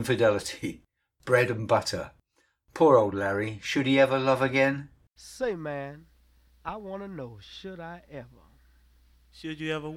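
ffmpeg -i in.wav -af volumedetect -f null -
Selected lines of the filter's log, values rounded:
mean_volume: -28.3 dB
max_volume: -7.6 dB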